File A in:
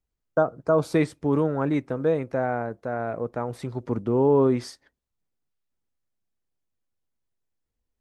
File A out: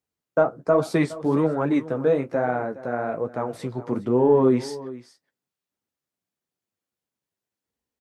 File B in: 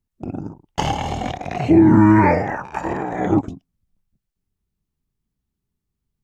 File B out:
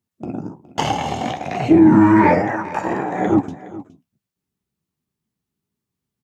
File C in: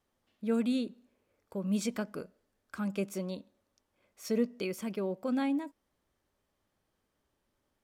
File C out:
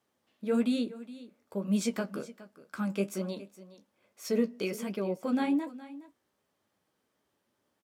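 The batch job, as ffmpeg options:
-filter_complex "[0:a]highpass=140,asplit=2[link_01][link_02];[link_02]asoftclip=type=tanh:threshold=-13.5dB,volume=-9dB[link_03];[link_01][link_03]amix=inputs=2:normalize=0,flanger=delay=8.1:depth=9.3:regen=-36:speed=1.2:shape=triangular,aecho=1:1:416:0.141,volume=3.5dB"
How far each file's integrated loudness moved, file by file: +2.0, +1.0, +2.0 LU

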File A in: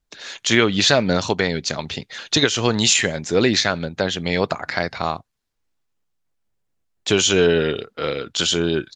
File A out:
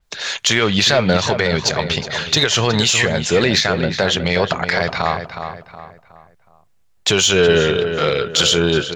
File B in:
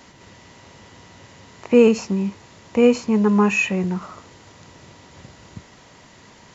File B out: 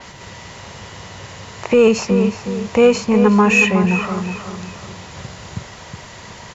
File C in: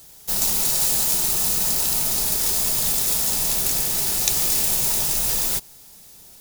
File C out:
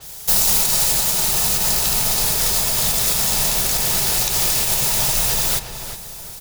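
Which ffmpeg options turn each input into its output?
-filter_complex "[0:a]equalizer=frequency=280:width=1.9:gain=-9,asplit=2[link_01][link_02];[link_02]acompressor=threshold=-30dB:ratio=6,volume=-3dB[link_03];[link_01][link_03]amix=inputs=2:normalize=0,alimiter=limit=-9dB:level=0:latency=1:release=82,acontrast=67,asplit=2[link_04][link_05];[link_05]adelay=367,lowpass=frequency=2800:poles=1,volume=-8dB,asplit=2[link_06][link_07];[link_07]adelay=367,lowpass=frequency=2800:poles=1,volume=0.39,asplit=2[link_08][link_09];[link_09]adelay=367,lowpass=frequency=2800:poles=1,volume=0.39,asplit=2[link_10][link_11];[link_11]adelay=367,lowpass=frequency=2800:poles=1,volume=0.39[link_12];[link_06][link_08][link_10][link_12]amix=inputs=4:normalize=0[link_13];[link_04][link_13]amix=inputs=2:normalize=0,adynamicequalizer=threshold=0.0316:dfrequency=5500:dqfactor=0.7:tfrequency=5500:tqfactor=0.7:attack=5:release=100:ratio=0.375:range=2.5:mode=cutabove:tftype=highshelf"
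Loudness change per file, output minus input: +3.0, +3.5, +2.5 LU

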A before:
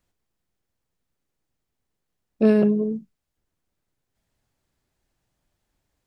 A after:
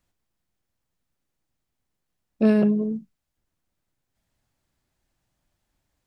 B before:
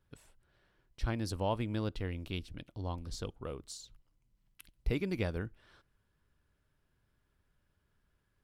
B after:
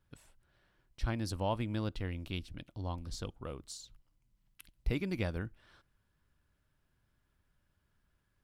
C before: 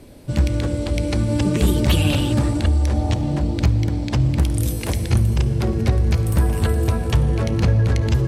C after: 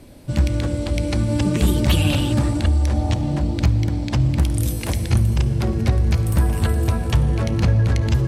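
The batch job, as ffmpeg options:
-af "equalizer=frequency=430:width_type=o:width=0.41:gain=-4.5"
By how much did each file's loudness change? −1.0, −0.5, 0.0 LU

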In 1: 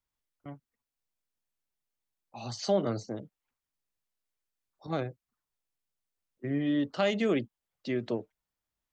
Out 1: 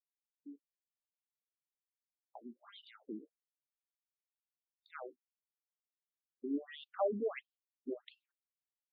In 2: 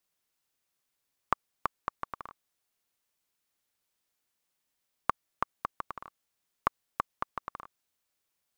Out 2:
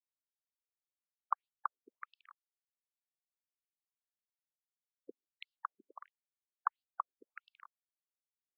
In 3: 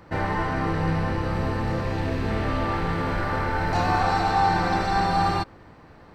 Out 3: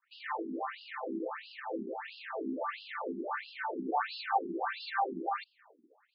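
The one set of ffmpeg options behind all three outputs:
-af "agate=range=-29dB:threshold=-47dB:ratio=16:detection=peak,afftfilt=real='re*between(b*sr/1024,280*pow(3800/280,0.5+0.5*sin(2*PI*1.5*pts/sr))/1.41,280*pow(3800/280,0.5+0.5*sin(2*PI*1.5*pts/sr))*1.41)':imag='im*between(b*sr/1024,280*pow(3800/280,0.5+0.5*sin(2*PI*1.5*pts/sr))/1.41,280*pow(3800/280,0.5+0.5*sin(2*PI*1.5*pts/sr))*1.41)':win_size=1024:overlap=0.75,volume=-3.5dB"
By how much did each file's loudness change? −10.0, −5.0, −12.5 LU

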